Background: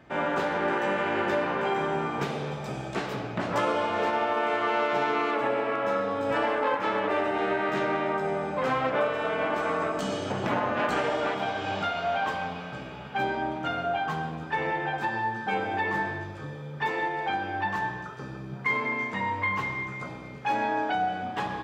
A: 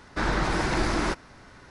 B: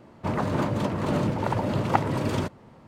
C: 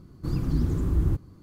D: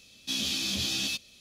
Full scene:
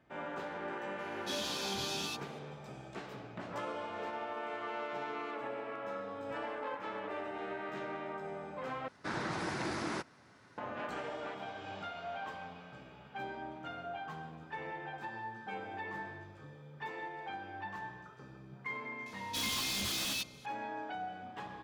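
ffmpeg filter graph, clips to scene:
ffmpeg -i bed.wav -i cue0.wav -i cue1.wav -i cue2.wav -i cue3.wav -filter_complex "[4:a]asplit=2[link_01][link_02];[0:a]volume=-14dB[link_03];[link_01]flanger=delay=4:depth=7.5:regen=-28:speed=1.5:shape=triangular[link_04];[1:a]highpass=frequency=99:width=0.5412,highpass=frequency=99:width=1.3066[link_05];[link_02]aeval=exprs='0.0376*(abs(mod(val(0)/0.0376+3,4)-2)-1)':channel_layout=same[link_06];[link_03]asplit=2[link_07][link_08];[link_07]atrim=end=8.884[link_09];[link_05]atrim=end=1.7,asetpts=PTS-STARTPTS,volume=-10.5dB[link_10];[link_08]atrim=start=10.576[link_11];[link_04]atrim=end=1.4,asetpts=PTS-STARTPTS,volume=-5.5dB,afade=type=in:duration=0.004:curve=hsin,afade=type=out:start_time=1.396:duration=0.004:curve=hsin,adelay=990[link_12];[link_06]atrim=end=1.4,asetpts=PTS-STARTPTS,volume=-2.5dB,afade=type=in:duration=0.004:curve=hsin,afade=type=out:start_time=1.396:duration=0.004:curve=hsin,adelay=19060[link_13];[link_09][link_10]acrossfade=duration=0.004:curve1=hsin:curve2=hsin[link_14];[link_14][link_11]acrossfade=duration=0.004:curve1=hsin:curve2=hsin[link_15];[link_15][link_12][link_13]amix=inputs=3:normalize=0" out.wav

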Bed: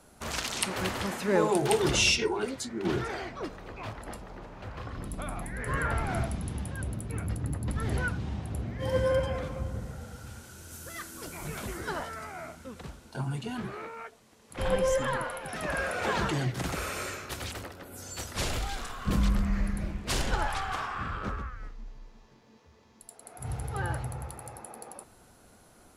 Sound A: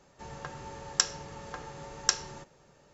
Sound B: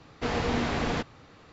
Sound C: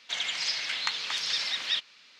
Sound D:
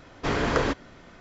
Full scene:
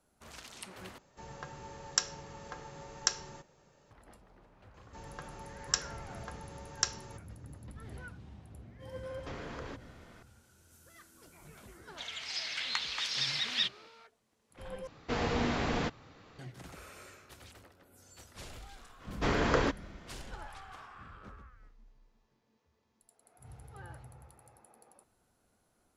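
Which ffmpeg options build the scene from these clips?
ffmpeg -i bed.wav -i cue0.wav -i cue1.wav -i cue2.wav -i cue3.wav -filter_complex "[1:a]asplit=2[link_01][link_02];[4:a]asplit=2[link_03][link_04];[0:a]volume=-16.5dB[link_05];[link_03]acompressor=threshold=-34dB:ratio=6:attack=3.2:release=140:knee=1:detection=peak[link_06];[3:a]dynaudnorm=framelen=210:gausssize=5:maxgain=11.5dB[link_07];[2:a]acontrast=53[link_08];[link_05]asplit=3[link_09][link_10][link_11];[link_09]atrim=end=0.984[link_12];[link_01]atrim=end=2.93,asetpts=PTS-STARTPTS,volume=-4dB[link_13];[link_10]atrim=start=3.906:end=14.874[link_14];[link_08]atrim=end=1.52,asetpts=PTS-STARTPTS,volume=-9.5dB[link_15];[link_11]atrim=start=16.386[link_16];[link_02]atrim=end=2.93,asetpts=PTS-STARTPTS,volume=-5dB,afade=type=in:duration=0.004:curve=hsin,afade=type=out:start_time=2.926:duration=0.004:curve=hsin,adelay=4740[link_17];[link_06]atrim=end=1.2,asetpts=PTS-STARTPTS,volume=-6.5dB,afade=type=in:duration=0.004:curve=hsin,afade=type=out:start_time=1.196:duration=0.004:curve=hsin,adelay=9030[link_18];[link_07]atrim=end=2.19,asetpts=PTS-STARTPTS,volume=-12dB,afade=type=in:duration=0.004:curve=hsin,afade=type=out:start_time=2.186:duration=0.004:curve=hsin,adelay=11880[link_19];[link_04]atrim=end=1.2,asetpts=PTS-STARTPTS,volume=-4dB,afade=type=in:duration=0.05,afade=type=out:start_time=1.15:duration=0.05,adelay=18980[link_20];[link_12][link_13]acrossfade=duration=0.004:curve1=hsin:curve2=hsin[link_21];[link_21][link_14]acrossfade=duration=0.004:curve1=hsin:curve2=hsin[link_22];[link_22][link_15]acrossfade=duration=0.004:curve1=hsin:curve2=hsin[link_23];[link_23][link_16]acrossfade=duration=0.004:curve1=hsin:curve2=hsin[link_24];[link_24][link_17][link_18][link_19][link_20]amix=inputs=5:normalize=0" out.wav

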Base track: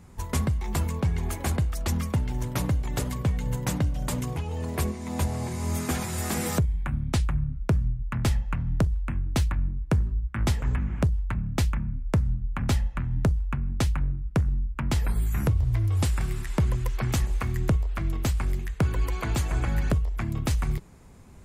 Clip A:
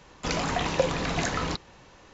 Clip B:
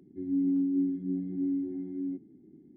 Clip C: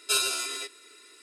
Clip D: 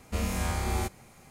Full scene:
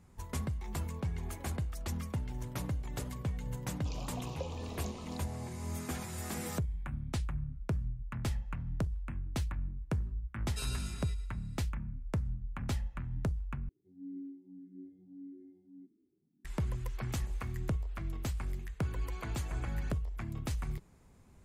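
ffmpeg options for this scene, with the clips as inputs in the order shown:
ffmpeg -i bed.wav -i cue0.wav -i cue1.wav -i cue2.wav -filter_complex "[0:a]volume=-10.5dB[link_01];[1:a]asuperstop=centerf=1700:order=8:qfactor=1.4[link_02];[3:a]aecho=1:1:113|226|339|452:0.266|0.101|0.0384|0.0146[link_03];[2:a]asplit=2[link_04][link_05];[link_05]afreqshift=1.7[link_06];[link_04][link_06]amix=inputs=2:normalize=1[link_07];[link_01]asplit=2[link_08][link_09];[link_08]atrim=end=13.694[link_10];[link_07]atrim=end=2.76,asetpts=PTS-STARTPTS,volume=-16dB[link_11];[link_09]atrim=start=16.446[link_12];[link_02]atrim=end=2.13,asetpts=PTS-STARTPTS,volume=-17.5dB,afade=type=in:duration=0.004:curve=hsin,afade=type=out:start_time=2.126:duration=0.004:curve=hsin,adelay=159201S[link_13];[link_03]atrim=end=1.22,asetpts=PTS-STARTPTS,volume=-17.5dB,afade=type=in:duration=0.004:curve=hsin,afade=type=out:start_time=1.216:duration=0.004:curve=hsin,adelay=10470[link_14];[link_10][link_11]acrossfade=duration=0.004:curve1=hsin:curve2=hsin[link_15];[link_15][link_12]acrossfade=duration=0.004:curve1=hsin:curve2=hsin[link_16];[link_16][link_13][link_14]amix=inputs=3:normalize=0" out.wav

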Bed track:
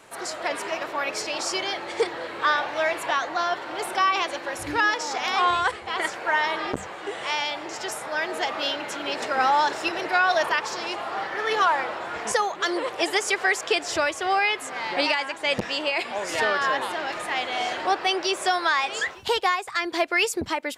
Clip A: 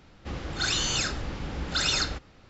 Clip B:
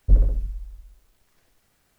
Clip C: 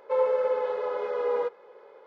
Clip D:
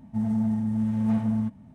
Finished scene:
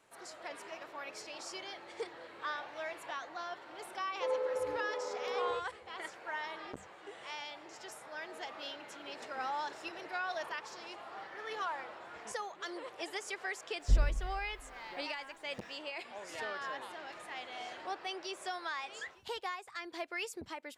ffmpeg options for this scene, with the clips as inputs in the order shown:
ffmpeg -i bed.wav -i cue0.wav -i cue1.wav -i cue2.wav -filter_complex "[0:a]volume=-17dB[link_01];[3:a]atrim=end=2.06,asetpts=PTS-STARTPTS,volume=-10dB,afade=type=in:duration=0.004:curve=hsin,afade=type=out:start_time=2.056:duration=0.004:curve=hsin,adelay=4110[link_02];[2:a]atrim=end=1.98,asetpts=PTS-STARTPTS,volume=-10.5dB,afade=type=in:duration=0.004:curve=hsin,afade=type=out:start_time=1.976:duration=0.004:curve=hsin,adelay=608580S[link_03];[link_01][link_02][link_03]amix=inputs=3:normalize=0" out.wav

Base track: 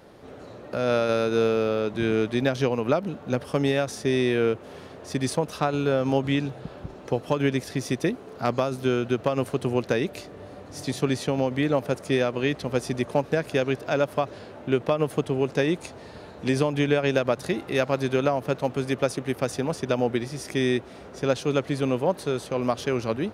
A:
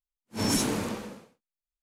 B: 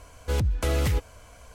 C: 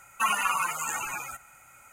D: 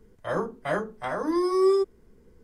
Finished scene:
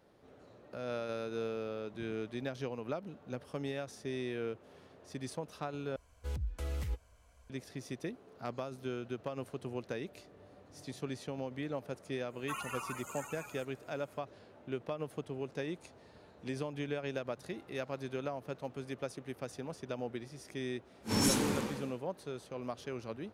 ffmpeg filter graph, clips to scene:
ffmpeg -i bed.wav -i cue0.wav -i cue1.wav -i cue2.wav -filter_complex "[0:a]volume=-15.5dB[link_01];[2:a]equalizer=frequency=61:width=1.9:gain=7.5[link_02];[1:a]bandreject=frequency=650:width=8.4[link_03];[link_01]asplit=2[link_04][link_05];[link_04]atrim=end=5.964[link_06];[link_02]atrim=end=1.54,asetpts=PTS-STARTPTS,volume=-17.5dB[link_07];[link_05]atrim=start=7.496[link_08];[3:a]atrim=end=1.92,asetpts=PTS-STARTPTS,volume=-15.5dB,afade=type=in:duration=0.05,afade=type=out:start_time=1.87:duration=0.05,adelay=12280[link_09];[link_03]atrim=end=1.82,asetpts=PTS-STARTPTS,volume=-3dB,afade=type=in:duration=0.004:curve=hsin,afade=type=out:start_time=1.816:duration=0.004:curve=hsin,adelay=20720[link_10];[link_06][link_07]acrossfade=duration=0.004:curve1=hsin:curve2=hsin[link_11];[link_11][link_08]acrossfade=duration=0.004:curve1=hsin:curve2=hsin[link_12];[link_12][link_09][link_10]amix=inputs=3:normalize=0" out.wav

